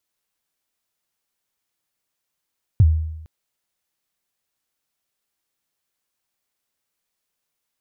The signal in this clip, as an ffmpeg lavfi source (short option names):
-f lavfi -i "aevalsrc='0.447*pow(10,-3*t/0.89)*sin(2*PI*(120*0.043/log(79/120)*(exp(log(79/120)*min(t,0.043)/0.043)-1)+79*max(t-0.043,0)))':d=0.46:s=44100"